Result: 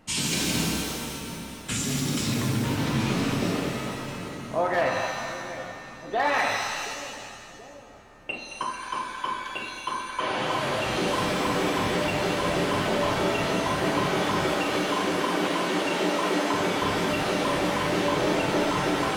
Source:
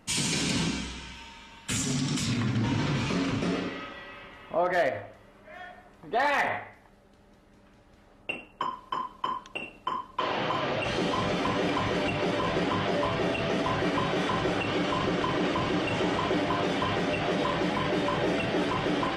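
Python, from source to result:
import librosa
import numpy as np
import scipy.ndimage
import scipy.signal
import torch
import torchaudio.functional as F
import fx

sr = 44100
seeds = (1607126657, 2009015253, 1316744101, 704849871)

y = fx.brickwall_highpass(x, sr, low_hz=170.0, at=(14.45, 16.54))
y = fx.echo_split(y, sr, split_hz=580.0, low_ms=728, high_ms=221, feedback_pct=52, wet_db=-10)
y = fx.rev_shimmer(y, sr, seeds[0], rt60_s=1.3, semitones=7, shimmer_db=-2, drr_db=5.5)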